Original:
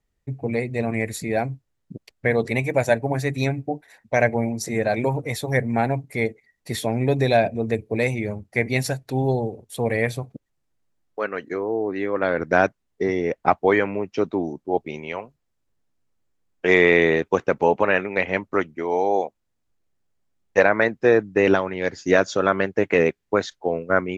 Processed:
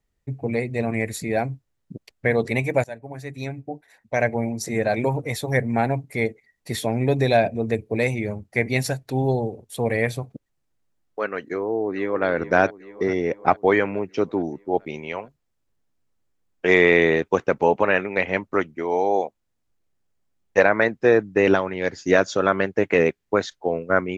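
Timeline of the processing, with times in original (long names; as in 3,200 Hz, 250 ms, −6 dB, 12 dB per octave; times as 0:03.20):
0:02.84–0:04.78: fade in, from −19 dB
0:11.43–0:12.27: delay throw 430 ms, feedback 65%, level −14 dB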